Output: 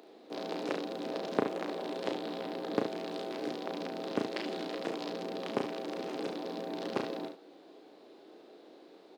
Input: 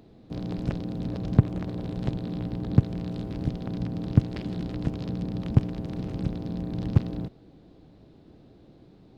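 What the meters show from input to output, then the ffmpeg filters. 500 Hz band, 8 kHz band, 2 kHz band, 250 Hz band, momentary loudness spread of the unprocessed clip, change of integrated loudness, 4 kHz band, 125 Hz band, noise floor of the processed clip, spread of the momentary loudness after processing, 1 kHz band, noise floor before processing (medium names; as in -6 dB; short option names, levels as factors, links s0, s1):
+4.0 dB, no reading, +5.0 dB, -8.5 dB, 9 LU, -8.0 dB, +5.0 dB, -26.5 dB, -56 dBFS, 21 LU, +5.5 dB, -54 dBFS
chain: -filter_complex "[0:a]highpass=f=360:w=0.5412,highpass=f=360:w=1.3066,asplit=2[s0][s1];[s1]aecho=0:1:35|72:0.562|0.376[s2];[s0][s2]amix=inputs=2:normalize=0,volume=1.5"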